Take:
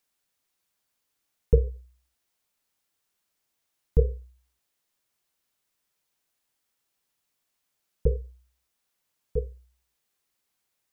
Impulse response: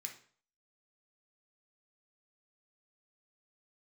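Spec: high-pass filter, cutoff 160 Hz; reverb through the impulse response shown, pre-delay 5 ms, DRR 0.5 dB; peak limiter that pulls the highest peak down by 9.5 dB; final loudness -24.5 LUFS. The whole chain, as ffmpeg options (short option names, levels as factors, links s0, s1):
-filter_complex "[0:a]highpass=160,alimiter=limit=0.112:level=0:latency=1,asplit=2[s0][s1];[1:a]atrim=start_sample=2205,adelay=5[s2];[s1][s2]afir=irnorm=-1:irlink=0,volume=1.41[s3];[s0][s3]amix=inputs=2:normalize=0,volume=4.22"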